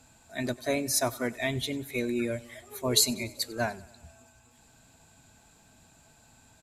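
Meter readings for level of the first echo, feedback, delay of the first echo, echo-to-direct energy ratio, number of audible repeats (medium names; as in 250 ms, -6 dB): -22.0 dB, 60%, 96 ms, -20.0 dB, 3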